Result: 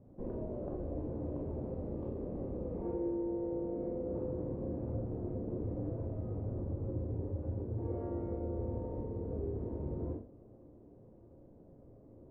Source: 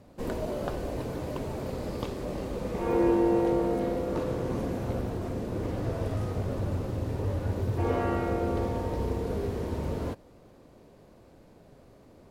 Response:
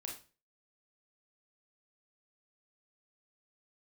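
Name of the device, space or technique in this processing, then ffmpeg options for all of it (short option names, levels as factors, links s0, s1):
television next door: -filter_complex "[0:a]acompressor=threshold=0.0251:ratio=5,lowpass=510[s0];[1:a]atrim=start_sample=2205[s1];[s0][s1]afir=irnorm=-1:irlink=0,volume=1.12"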